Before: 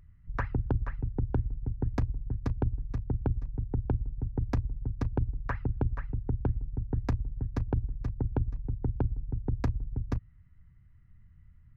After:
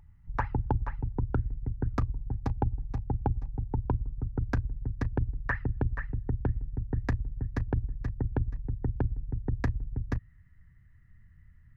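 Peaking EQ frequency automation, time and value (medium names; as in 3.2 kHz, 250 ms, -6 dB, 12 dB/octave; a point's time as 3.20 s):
peaking EQ +14 dB 0.26 oct
1.12 s 860 Hz
1.59 s 2.2 kHz
2.27 s 820 Hz
3.63 s 820 Hz
4.78 s 1.8 kHz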